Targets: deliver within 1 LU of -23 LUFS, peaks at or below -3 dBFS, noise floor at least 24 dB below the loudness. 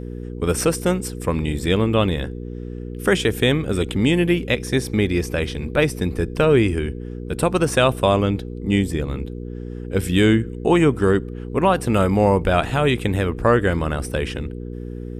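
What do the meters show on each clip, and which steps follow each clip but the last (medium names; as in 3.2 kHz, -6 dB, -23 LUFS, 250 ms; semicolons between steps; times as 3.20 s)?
hum 60 Hz; highest harmonic 480 Hz; hum level -29 dBFS; loudness -20.0 LUFS; peak level -4.0 dBFS; loudness target -23.0 LUFS
-> de-hum 60 Hz, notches 8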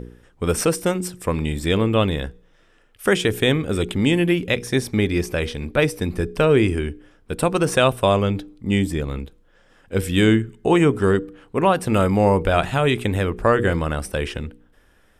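hum not found; loudness -20.5 LUFS; peak level -4.5 dBFS; loudness target -23.0 LUFS
-> trim -2.5 dB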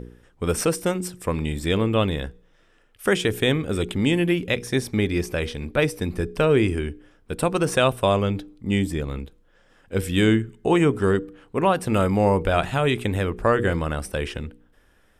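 loudness -23.0 LUFS; peak level -7.0 dBFS; noise floor -59 dBFS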